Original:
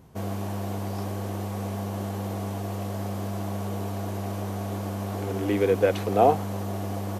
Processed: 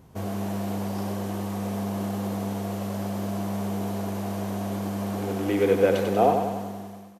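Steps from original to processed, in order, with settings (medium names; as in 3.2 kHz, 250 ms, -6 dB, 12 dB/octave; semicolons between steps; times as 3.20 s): fade out at the end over 1.20 s; feedback delay 95 ms, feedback 59%, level -6 dB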